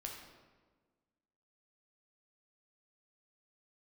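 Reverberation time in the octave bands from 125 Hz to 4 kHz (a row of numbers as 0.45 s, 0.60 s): 1.6 s, 1.8 s, 1.5 s, 1.3 s, 1.1 s, 0.90 s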